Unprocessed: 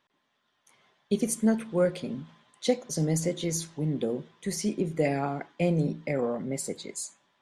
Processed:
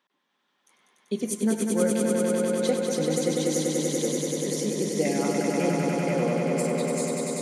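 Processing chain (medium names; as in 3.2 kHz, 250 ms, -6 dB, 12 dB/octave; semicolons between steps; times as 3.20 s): high-pass 180 Hz 24 dB/octave; band-stop 650 Hz, Q 12; on a send: echo with a slow build-up 97 ms, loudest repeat 5, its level -4 dB; on the sum: trim -1.5 dB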